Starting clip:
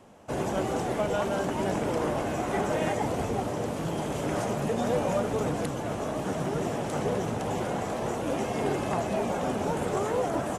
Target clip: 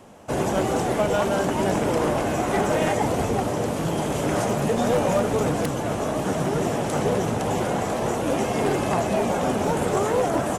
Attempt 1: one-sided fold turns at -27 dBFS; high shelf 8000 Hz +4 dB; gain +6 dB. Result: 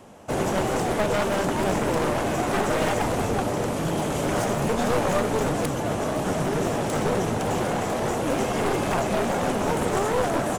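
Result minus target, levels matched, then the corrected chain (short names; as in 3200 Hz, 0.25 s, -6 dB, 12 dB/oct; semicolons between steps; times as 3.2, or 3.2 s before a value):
one-sided fold: distortion +16 dB
one-sided fold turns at -20.5 dBFS; high shelf 8000 Hz +4 dB; gain +6 dB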